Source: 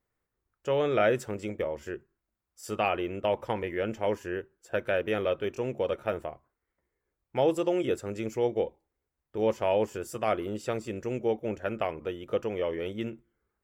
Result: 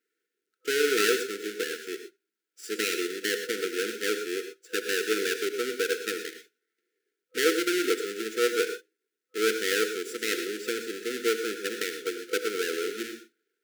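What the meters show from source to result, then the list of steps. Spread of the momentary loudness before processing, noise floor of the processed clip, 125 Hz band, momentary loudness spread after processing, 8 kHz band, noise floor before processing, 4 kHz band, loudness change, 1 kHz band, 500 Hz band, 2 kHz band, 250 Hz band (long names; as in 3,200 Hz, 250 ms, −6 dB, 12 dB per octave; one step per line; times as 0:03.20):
11 LU, below −85 dBFS, below −15 dB, 12 LU, +15.5 dB, below −85 dBFS, +12.0 dB, +2.0 dB, −4.5 dB, −0.5 dB, +8.5 dB, 0.0 dB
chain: each half-wave held at its own peak
high-pass filter 340 Hz 24 dB per octave
high-shelf EQ 11,000 Hz −3.5 dB
reverb whose tail is shaped and stops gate 140 ms rising, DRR 7.5 dB
brick-wall band-stop 500–1,300 Hz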